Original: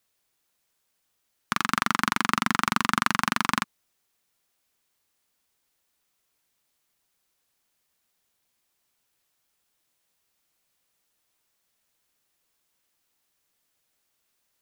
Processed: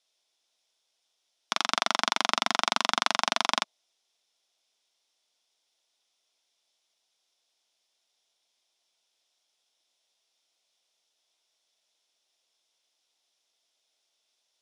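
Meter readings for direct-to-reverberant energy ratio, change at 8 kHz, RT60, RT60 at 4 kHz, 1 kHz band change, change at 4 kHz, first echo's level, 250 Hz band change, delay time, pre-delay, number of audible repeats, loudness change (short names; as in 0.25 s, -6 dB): none, 0.0 dB, none, none, -2.5 dB, +4.5 dB, none, -11.0 dB, none, none, none, -1.5 dB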